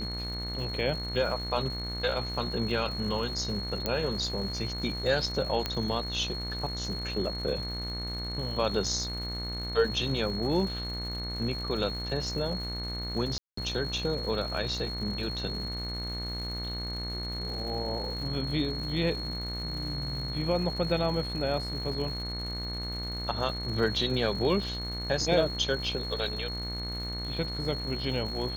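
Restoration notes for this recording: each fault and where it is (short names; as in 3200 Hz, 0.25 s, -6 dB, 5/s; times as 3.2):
buzz 60 Hz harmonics 38 -37 dBFS
crackle 270/s -40 dBFS
tone 4300 Hz -36 dBFS
3.86 pop -13 dBFS
5.66 pop -14 dBFS
13.38–13.57 gap 0.194 s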